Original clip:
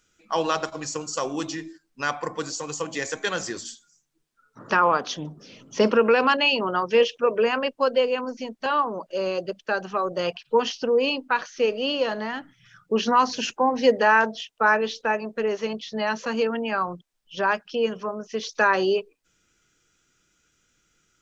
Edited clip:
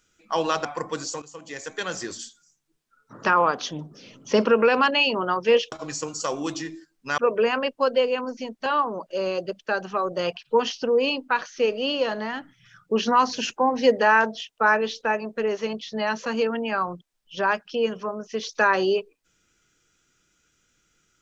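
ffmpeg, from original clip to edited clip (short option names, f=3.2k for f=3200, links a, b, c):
-filter_complex "[0:a]asplit=5[a][b][c][d][e];[a]atrim=end=0.652[f];[b]atrim=start=2.108:end=2.68,asetpts=PTS-STARTPTS,afade=t=out:st=0.568:d=0.004:c=hsin:silence=0.133352[g];[c]atrim=start=2.68:end=7.182,asetpts=PTS-STARTPTS,afade=t=in:d=0.94:silence=0.133352[h];[d]atrim=start=0.648:end=2.112[i];[e]atrim=start=7.178[j];[g][h]concat=n=2:v=0:a=1[k];[f][k]acrossfade=d=0.004:c1=hsin:c2=hsin[l];[l][i]acrossfade=d=0.004:c1=hsin:c2=hsin[m];[m][j]acrossfade=d=0.004:c1=hsin:c2=hsin"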